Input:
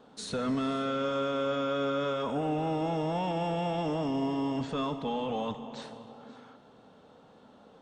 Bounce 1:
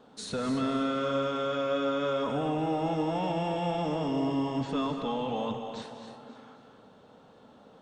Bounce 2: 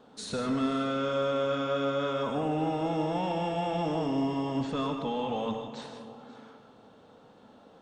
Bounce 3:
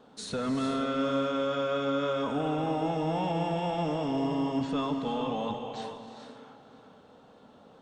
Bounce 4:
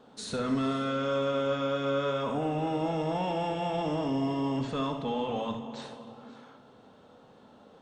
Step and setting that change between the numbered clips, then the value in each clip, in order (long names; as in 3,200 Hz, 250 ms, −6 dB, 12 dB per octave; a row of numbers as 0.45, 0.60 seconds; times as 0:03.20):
reverb whose tail is shaped and stops, gate: 310, 180, 480, 90 milliseconds